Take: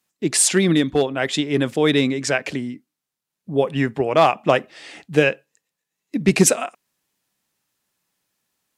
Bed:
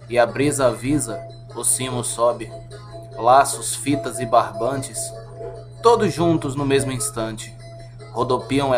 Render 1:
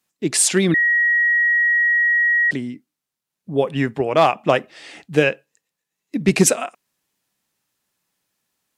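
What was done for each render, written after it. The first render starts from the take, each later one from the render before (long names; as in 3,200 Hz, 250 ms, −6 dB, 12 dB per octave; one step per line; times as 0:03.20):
0:00.74–0:02.51: beep over 1,900 Hz −13.5 dBFS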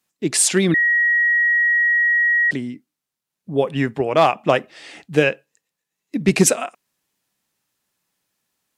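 no processing that can be heard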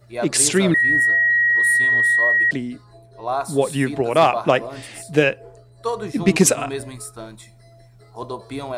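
mix in bed −10.5 dB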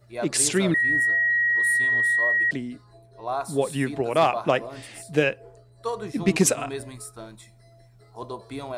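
level −5 dB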